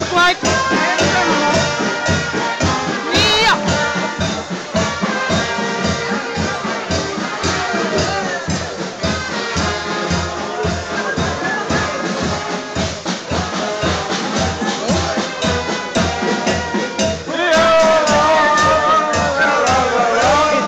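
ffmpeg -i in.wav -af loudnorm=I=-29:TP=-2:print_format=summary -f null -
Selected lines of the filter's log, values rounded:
Input Integrated:    -15.7 LUFS
Input True Peak:      -7.6 dBTP
Input LRA:             6.3 LU
Input Threshold:     -25.7 LUFS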